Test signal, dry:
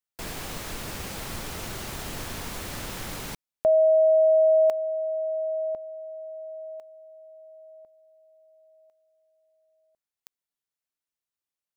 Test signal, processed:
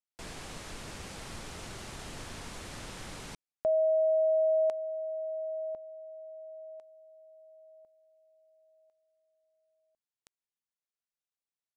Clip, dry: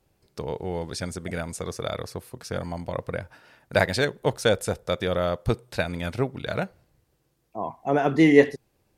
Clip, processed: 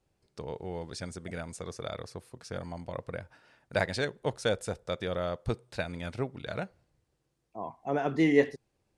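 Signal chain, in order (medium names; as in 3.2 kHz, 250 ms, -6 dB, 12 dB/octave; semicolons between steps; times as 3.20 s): low-pass 10 kHz 24 dB/octave; trim -7.5 dB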